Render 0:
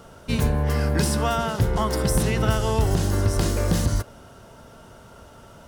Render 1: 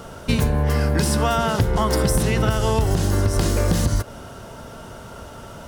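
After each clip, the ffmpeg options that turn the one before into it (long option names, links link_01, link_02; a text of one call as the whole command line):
ffmpeg -i in.wav -af "acompressor=threshold=-24dB:ratio=6,volume=8.5dB" out.wav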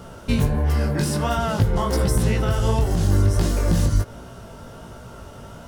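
ffmpeg -i in.wav -af "lowshelf=frequency=290:gain=4.5,flanger=delay=16:depth=5.1:speed=1.4,volume=-1dB" out.wav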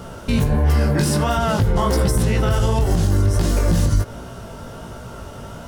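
ffmpeg -i in.wav -af "alimiter=limit=-14dB:level=0:latency=1:release=65,volume=5dB" out.wav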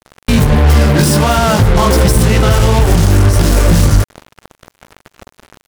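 ffmpeg -i in.wav -af "acrusher=bits=3:mix=0:aa=0.5,volume=8dB" out.wav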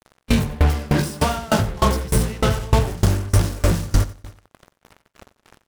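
ffmpeg -i in.wav -filter_complex "[0:a]asplit=2[link_01][link_02];[link_02]aecho=0:1:91|182|273|364|455:0.335|0.154|0.0709|0.0326|0.015[link_03];[link_01][link_03]amix=inputs=2:normalize=0,aeval=exprs='val(0)*pow(10,-25*if(lt(mod(3.3*n/s,1),2*abs(3.3)/1000),1-mod(3.3*n/s,1)/(2*abs(3.3)/1000),(mod(3.3*n/s,1)-2*abs(3.3)/1000)/(1-2*abs(3.3)/1000))/20)':channel_layout=same,volume=-3dB" out.wav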